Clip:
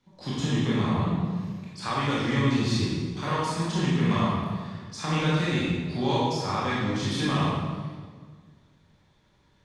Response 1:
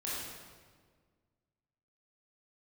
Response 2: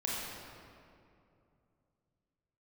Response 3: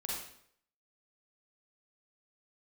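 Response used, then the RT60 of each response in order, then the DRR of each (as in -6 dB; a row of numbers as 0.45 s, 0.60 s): 1; 1.7 s, 2.6 s, 0.65 s; -8.0 dB, -6.0 dB, -5.0 dB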